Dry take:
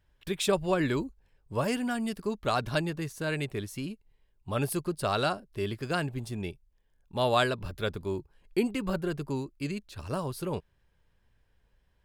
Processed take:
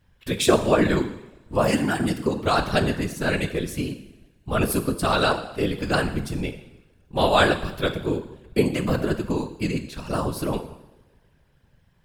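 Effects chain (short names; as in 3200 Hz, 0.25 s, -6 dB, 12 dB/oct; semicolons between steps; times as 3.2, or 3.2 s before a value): two-slope reverb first 0.85 s, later 2.5 s, from -24 dB, DRR 7 dB; whisperiser; gain +7 dB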